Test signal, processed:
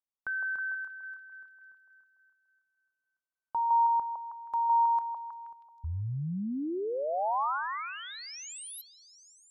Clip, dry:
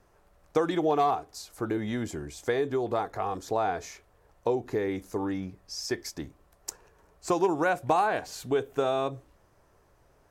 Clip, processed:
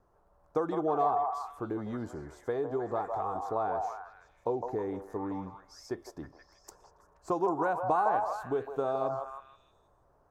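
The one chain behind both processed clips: resonant high shelf 1.6 kHz -10 dB, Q 1.5; repeats whose band climbs or falls 159 ms, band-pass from 780 Hz, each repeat 0.7 oct, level -1.5 dB; trim -5.5 dB

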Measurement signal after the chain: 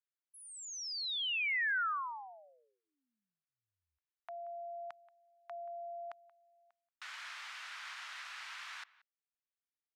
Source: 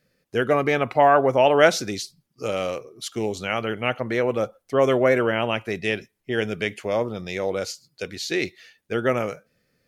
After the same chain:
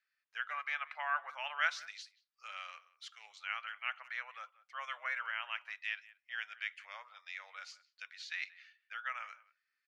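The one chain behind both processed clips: inverse Chebyshev high-pass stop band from 380 Hz, stop band 60 dB; tape spacing loss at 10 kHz 26 dB; speakerphone echo 180 ms, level -20 dB; trim -5 dB

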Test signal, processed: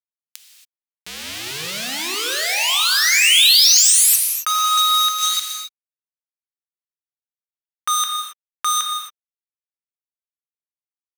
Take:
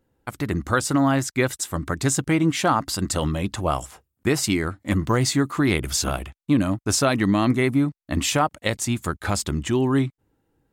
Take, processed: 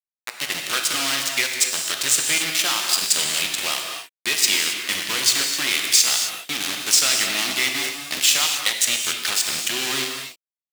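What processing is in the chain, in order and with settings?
compression 3:1, threshold -21 dBFS; on a send: thinning echo 452 ms, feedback 61%, high-pass 470 Hz, level -23 dB; on the sum: small samples zeroed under -24 dBFS; frequency weighting D; in parallel at -12 dB: sine folder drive 10 dB, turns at 0.5 dBFS; on the sum: tilt EQ +3.5 dB/octave; gated-style reverb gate 300 ms flat, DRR 2 dB; trim -11.5 dB

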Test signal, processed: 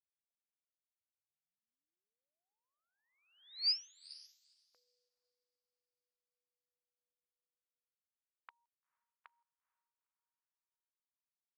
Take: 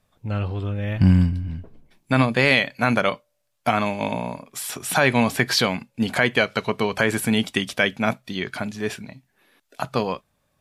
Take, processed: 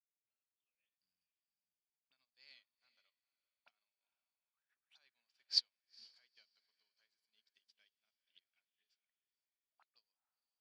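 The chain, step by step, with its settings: hum notches 50/100/150/200 Hz; dynamic bell 9.9 kHz, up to -4 dB, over -40 dBFS, Q 0.82; auto-wah 610–4800 Hz, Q 7.5, up, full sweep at -24 dBFS; Chebyshev shaper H 2 -30 dB, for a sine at -10.5 dBFS; echo that smears into a reverb 464 ms, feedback 47%, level -7 dB; upward expansion 2.5:1, over -50 dBFS; trim -4 dB

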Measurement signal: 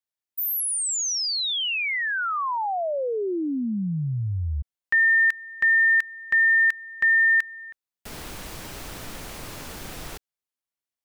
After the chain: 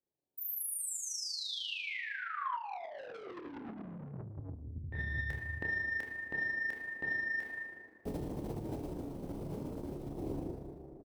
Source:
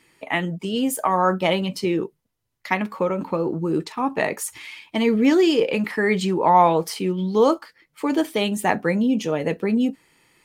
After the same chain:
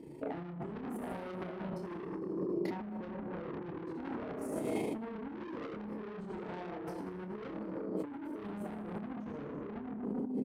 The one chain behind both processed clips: FFT filter 190 Hz 0 dB, 270 Hz +5 dB, 390 Hz +5 dB, 880 Hz -10 dB, 1.3 kHz -27 dB, 12 kHz -24 dB; peak limiter -20.5 dBFS; plate-style reverb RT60 2 s, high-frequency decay 0.65×, DRR -1 dB; saturation -29.5 dBFS; delay 86 ms -16.5 dB; AM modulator 26 Hz, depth 40%; doubling 28 ms -5 dB; compressor with a negative ratio -43 dBFS, ratio -1; band-stop 6.9 kHz, Q 17; dynamic bell 490 Hz, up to -4 dB, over -54 dBFS, Q 0.72; high-pass 83 Hz 6 dB/octave; trim +5.5 dB

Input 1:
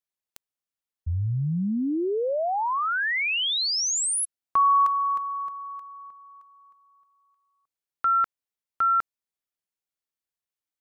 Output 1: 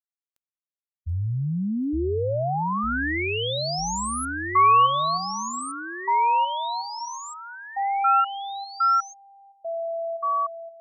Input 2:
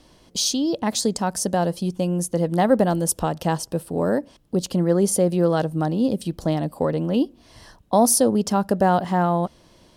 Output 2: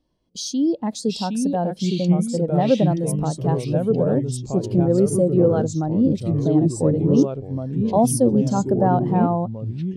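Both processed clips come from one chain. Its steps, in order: in parallel at -2.5 dB: peak limiter -16 dBFS; on the sum: ever faster or slower copies 663 ms, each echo -3 st, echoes 3; spectral contrast expander 1.5:1; trim -4 dB

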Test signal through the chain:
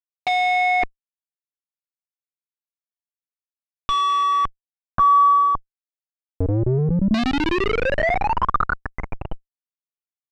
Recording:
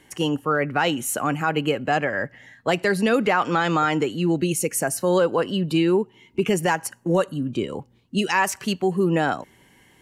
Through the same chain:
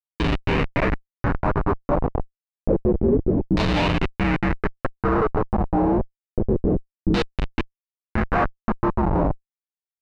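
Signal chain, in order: frequency axis rescaled in octaves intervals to 78%; distance through air 350 m; Schmitt trigger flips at -20.5 dBFS; band-stop 3.3 kHz, Q 10; LFO low-pass saw down 0.28 Hz 280–3900 Hz; trim +5 dB

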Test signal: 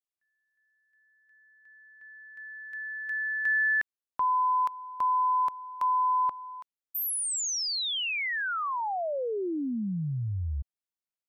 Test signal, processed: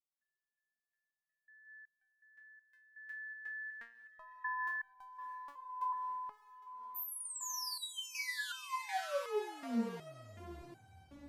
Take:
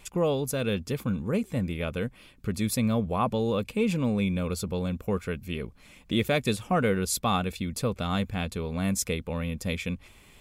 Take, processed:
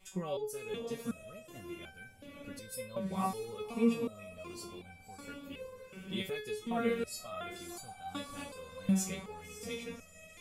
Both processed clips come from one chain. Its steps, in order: echo that smears into a reverb 587 ms, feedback 48%, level -7 dB; resonator arpeggio 2.7 Hz 190–780 Hz; trim +3.5 dB

